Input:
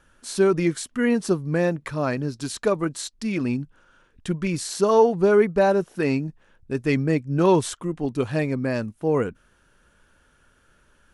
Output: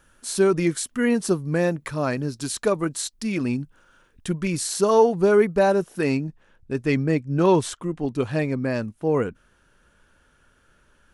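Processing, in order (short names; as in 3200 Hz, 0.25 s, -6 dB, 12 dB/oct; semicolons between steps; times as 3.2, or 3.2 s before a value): high shelf 9300 Hz +11 dB, from 6.17 s -3 dB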